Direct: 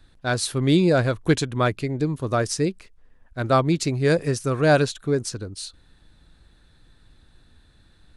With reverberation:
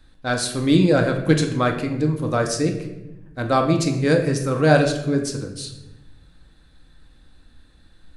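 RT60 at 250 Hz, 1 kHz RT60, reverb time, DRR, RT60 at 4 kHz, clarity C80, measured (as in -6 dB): 1.5 s, 0.80 s, 1.0 s, 3.0 dB, 0.65 s, 10.5 dB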